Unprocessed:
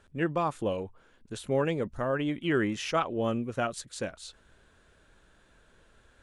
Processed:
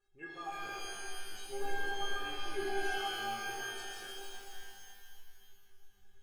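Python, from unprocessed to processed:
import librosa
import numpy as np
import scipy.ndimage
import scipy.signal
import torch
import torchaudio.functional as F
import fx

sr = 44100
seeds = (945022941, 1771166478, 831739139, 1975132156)

y = fx.stiff_resonator(x, sr, f0_hz=390.0, decay_s=0.26, stiffness=0.008)
y = fx.dispersion(y, sr, late='highs', ms=53.0, hz=770.0, at=(2.1, 3.49))
y = fx.rev_shimmer(y, sr, seeds[0], rt60_s=2.3, semitones=12, shimmer_db=-2, drr_db=-3.0)
y = y * 10.0 ** (-2.5 / 20.0)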